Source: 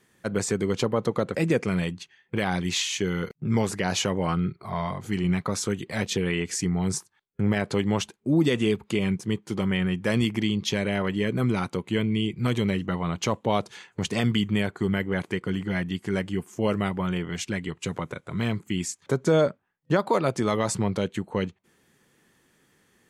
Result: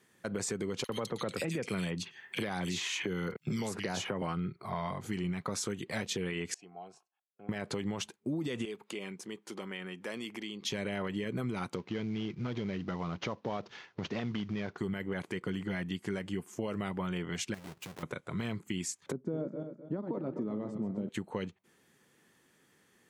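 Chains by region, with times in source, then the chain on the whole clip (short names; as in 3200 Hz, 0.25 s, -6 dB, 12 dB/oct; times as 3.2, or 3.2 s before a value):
0.84–4.22 bands offset in time highs, lows 50 ms, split 2500 Hz + three-band squash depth 100%
6.54–7.49 vowel filter a + notch comb 1200 Hz
8.65–10.65 HPF 300 Hz + compressor 2:1, threshold -39 dBFS
11.75–14.78 CVSD 32 kbps + high shelf 4200 Hz -9 dB + compressor 2:1, threshold -27 dBFS
17.54–18.03 half-waves squared off + compressor 5:1, threshold -40 dBFS
19.12–21.09 regenerating reverse delay 0.128 s, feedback 53%, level -8 dB + band-pass 240 Hz, Q 1.8
whole clip: HPF 120 Hz 6 dB/oct; limiter -18 dBFS; compressor, threshold -28 dBFS; gain -3 dB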